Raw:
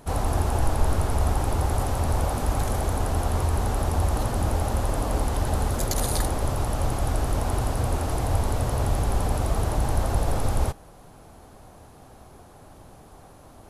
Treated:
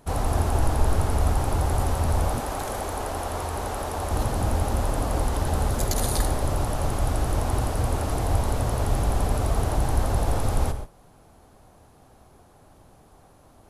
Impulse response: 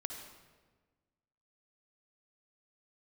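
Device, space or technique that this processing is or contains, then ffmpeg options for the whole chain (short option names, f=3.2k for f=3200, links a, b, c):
keyed gated reverb: -filter_complex "[0:a]asplit=3[a][b][c];[1:a]atrim=start_sample=2205[d];[b][d]afir=irnorm=-1:irlink=0[e];[c]apad=whole_len=603800[f];[e][f]sidechaingate=range=-33dB:threshold=-39dB:ratio=16:detection=peak,volume=1.5dB[g];[a][g]amix=inputs=2:normalize=0,asettb=1/sr,asplit=3[h][i][j];[h]atrim=end=2.404[k];[i]atrim=start=2.4:end=4.11,asetpts=PTS-STARTPTS,afade=t=in:d=0.004:c=qsin,afade=t=out:st=1.706:d=0.004:c=qsin,bass=f=250:g=-11,treble=f=4k:g=-1[l];[j]atrim=start=4.106[m];[k][l]acrossfade=d=0.004:c1=hsin:c2=qsin[n];[n][m]acrossfade=d=0.004:c1=qsin:c2=hsin,volume=-5.5dB"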